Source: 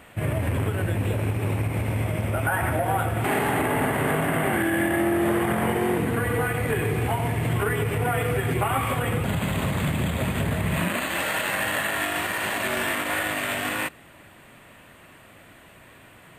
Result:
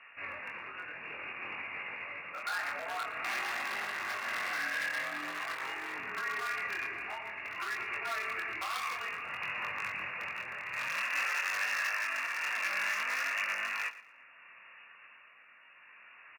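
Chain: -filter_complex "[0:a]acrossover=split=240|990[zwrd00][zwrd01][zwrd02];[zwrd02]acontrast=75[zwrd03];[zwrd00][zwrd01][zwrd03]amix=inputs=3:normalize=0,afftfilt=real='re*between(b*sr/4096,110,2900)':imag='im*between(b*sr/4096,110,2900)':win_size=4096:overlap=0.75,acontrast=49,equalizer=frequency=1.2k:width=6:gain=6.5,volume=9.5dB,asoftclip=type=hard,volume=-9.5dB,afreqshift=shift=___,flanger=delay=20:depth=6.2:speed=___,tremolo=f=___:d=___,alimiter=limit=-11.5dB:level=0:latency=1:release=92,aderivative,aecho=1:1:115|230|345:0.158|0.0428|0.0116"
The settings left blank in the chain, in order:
-46, 0.51, 0.61, 0.36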